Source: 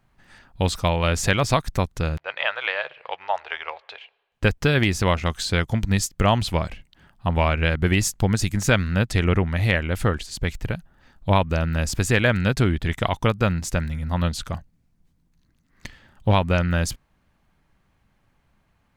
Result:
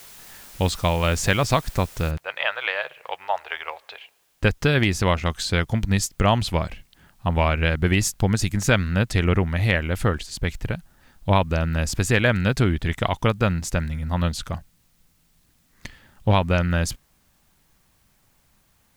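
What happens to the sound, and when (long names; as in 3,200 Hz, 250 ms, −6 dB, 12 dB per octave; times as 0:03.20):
0:02.11: noise floor change −45 dB −66 dB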